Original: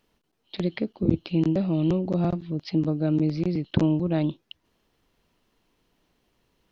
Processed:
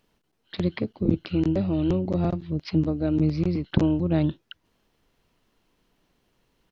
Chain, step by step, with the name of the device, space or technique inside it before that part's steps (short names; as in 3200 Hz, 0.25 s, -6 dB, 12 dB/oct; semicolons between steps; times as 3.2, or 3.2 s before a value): octave pedal (harmoniser -12 st -8 dB)